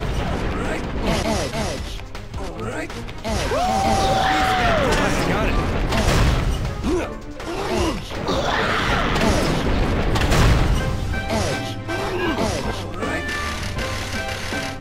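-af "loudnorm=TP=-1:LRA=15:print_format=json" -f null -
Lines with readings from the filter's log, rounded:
"input_i" : "-22.1",
"input_tp" : "-5.2",
"input_lra" : "4.8",
"input_thresh" : "-32.2",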